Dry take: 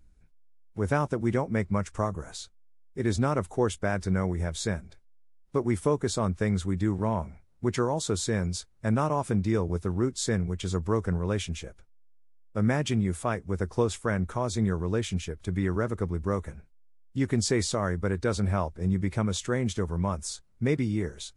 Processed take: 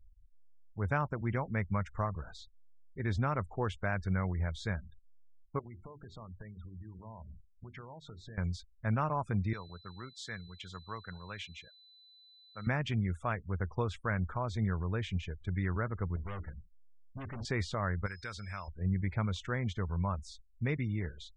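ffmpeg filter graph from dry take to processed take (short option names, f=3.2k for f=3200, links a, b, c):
-filter_complex "[0:a]asettb=1/sr,asplit=3[a][b][c];[a]atrim=end=5.594[d];[b]atrim=start=5.59:end=8.38,asetpts=PTS-STARTPTS,afade=t=in:d=0.004:c=qsin,afade=t=out:st=2.786:d=0.004:c=qsin,lowpass=f=2.8k:p=1,acompressor=threshold=-38dB:ratio=5:attack=3.2:release=140:knee=1:detection=peak,bandreject=f=50:t=h:w=6,bandreject=f=100:t=h:w=6,bandreject=f=150:t=h:w=6,bandreject=f=200:t=h:w=6,bandreject=f=250:t=h:w=6,bandreject=f=300:t=h:w=6,bandreject=f=350:t=h:w=6,bandreject=f=400:t=h:w=6[e];[c]atrim=start=8.376[f];[d][e]acrossfade=d=0.004:c1=hsin:c2=qsin[g];[g][f]acrossfade=d=0.004:c1=qsin:c2=hsin,asettb=1/sr,asplit=3[h][i][j];[h]atrim=end=9.534[k];[i]atrim=start=9.53:end=12.67,asetpts=PTS-STARTPTS,afade=t=in:d=0.004:c=qsin,afade=t=out:st=3.136:d=0.004:c=qsin,highpass=180,equalizer=f=320:t=o:w=2.8:g=-12,aeval=exprs='val(0)+0.00355*sin(2*PI*4000*n/s)':c=same[l];[j]atrim=start=12.666[m];[k][l]acrossfade=d=0.004:c1=hsin:c2=qsin[n];[n][m]acrossfade=d=0.004:c1=qsin:c2=hsin,asettb=1/sr,asplit=3[o][p][q];[o]atrim=end=16.164[r];[p]atrim=start=16.16:end=17.45,asetpts=PTS-STARTPTS,afade=t=in:d=0.004:c=qsin,afade=t=out:st=1.286:d=0.004:c=qsin,lowpass=3k,bandreject=f=60:t=h:w=6,bandreject=f=120:t=h:w=6,bandreject=f=180:t=h:w=6,bandreject=f=240:t=h:w=6,bandreject=f=300:t=h:w=6,bandreject=f=360:t=h:w=6,bandreject=f=420:t=h:w=6,asoftclip=type=hard:threshold=-32.5dB[s];[q]atrim=start=17.446[t];[r][s]acrossfade=d=0.004:c1=hsin:c2=qsin[u];[u][t]acrossfade=d=0.004:c1=qsin:c2=hsin,asettb=1/sr,asplit=3[v][w][x];[v]atrim=end=18.064[y];[w]atrim=start=18.06:end=18.68,asetpts=PTS-STARTPTS,afade=t=in:d=0.004:c=qsin,afade=t=out:st=0.616:d=0.004:c=qsin,highshelf=f=3.1k:g=10,acrossover=split=1200|5700[z][aa][ab];[z]acompressor=threshold=-39dB:ratio=4[ac];[aa]acompressor=threshold=-38dB:ratio=4[ad];[ab]acompressor=threshold=-37dB:ratio=4[ae];[ac][ad][ae]amix=inputs=3:normalize=0,aeval=exprs='val(0)+0.00447*sin(2*PI*5100*n/s)':c=same[af];[x]atrim=start=18.676[ag];[y][af]acrossfade=d=0.004:c1=hsin:c2=qsin[ah];[ah][ag]acrossfade=d=0.004:c1=qsin:c2=hsin,afftfilt=real='re*gte(hypot(re,im),0.00631)':imag='im*gte(hypot(re,im),0.00631)':win_size=1024:overlap=0.75,lowpass=2.6k,equalizer=f=350:t=o:w=2.2:g=-12"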